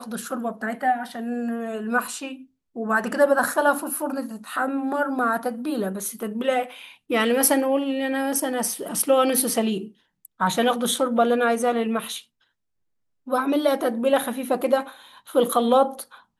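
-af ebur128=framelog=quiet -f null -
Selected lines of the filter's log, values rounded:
Integrated loudness:
  I:         -23.2 LUFS
  Threshold: -33.7 LUFS
Loudness range:
  LRA:         3.2 LU
  Threshold: -43.7 LUFS
  LRA low:   -25.3 LUFS
  LRA high:  -22.1 LUFS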